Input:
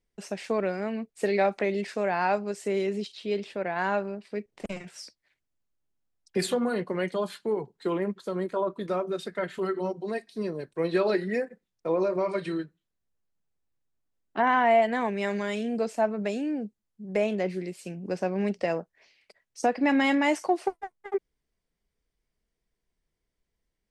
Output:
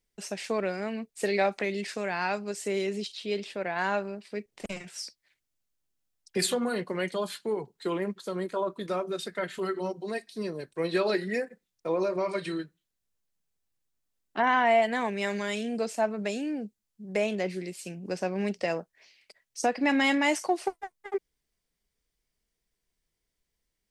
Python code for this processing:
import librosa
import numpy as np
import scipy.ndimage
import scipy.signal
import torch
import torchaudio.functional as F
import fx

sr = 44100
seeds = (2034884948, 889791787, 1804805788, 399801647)

y = fx.dynamic_eq(x, sr, hz=680.0, q=1.1, threshold_db=-36.0, ratio=4.0, max_db=-5, at=(1.6, 2.48))
y = fx.high_shelf(y, sr, hz=2400.0, db=9.0)
y = y * librosa.db_to_amplitude(-2.5)